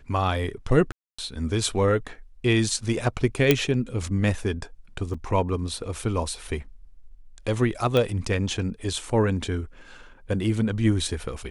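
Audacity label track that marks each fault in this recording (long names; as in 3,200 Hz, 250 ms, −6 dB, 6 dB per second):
0.920000	1.190000	drop-out 265 ms
3.510000	3.510000	click −3 dBFS
5.140000	5.140000	drop-out 4.5 ms
7.970000	7.970000	click −12 dBFS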